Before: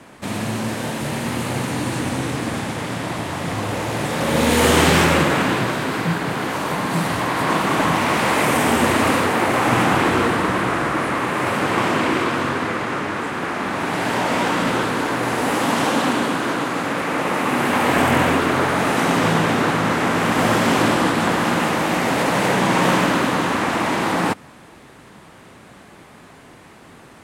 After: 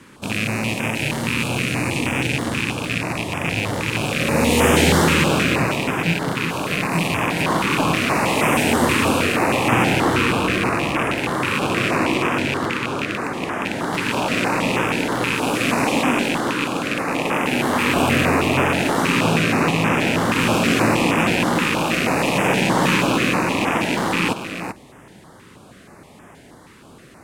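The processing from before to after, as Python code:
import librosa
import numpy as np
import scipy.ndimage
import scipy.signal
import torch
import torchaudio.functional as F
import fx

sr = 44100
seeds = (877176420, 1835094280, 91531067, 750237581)

y = fx.rattle_buzz(x, sr, strikes_db=-27.0, level_db=-9.0)
y = y + 10.0 ** (-8.5 / 20.0) * np.pad(y, (int(387 * sr / 1000.0), 0))[:len(y)]
y = fx.filter_held_notch(y, sr, hz=6.3, low_hz=690.0, high_hz=4200.0)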